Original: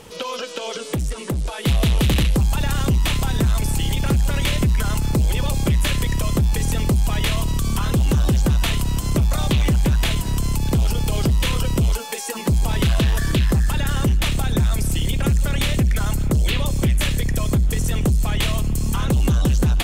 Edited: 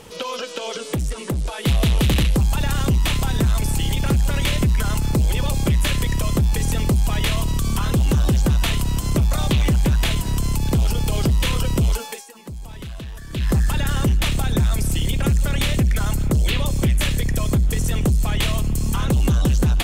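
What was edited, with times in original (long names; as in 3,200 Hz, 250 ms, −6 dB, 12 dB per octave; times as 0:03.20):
0:12.03–0:13.53: duck −15.5 dB, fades 0.23 s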